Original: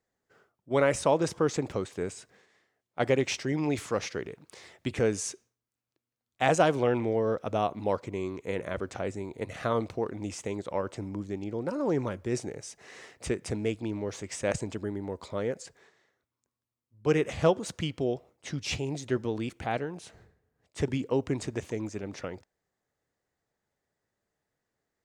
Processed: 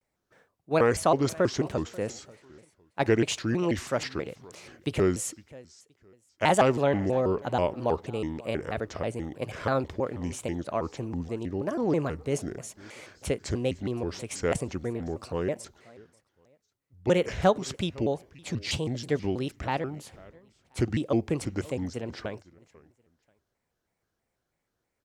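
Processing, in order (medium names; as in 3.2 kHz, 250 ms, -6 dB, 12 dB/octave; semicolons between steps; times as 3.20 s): bass shelf 64 Hz +7.5 dB; feedback delay 520 ms, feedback 26%, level -22 dB; vibrato with a chosen wave square 3.1 Hz, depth 250 cents; trim +1.5 dB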